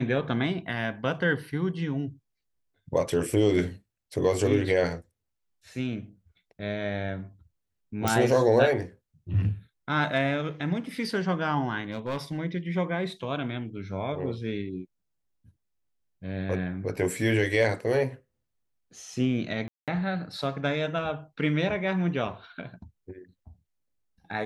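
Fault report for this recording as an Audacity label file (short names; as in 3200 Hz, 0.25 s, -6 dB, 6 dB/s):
8.080000	8.080000	pop
11.920000	12.380000	clipped -26 dBFS
19.680000	19.880000	gap 0.197 s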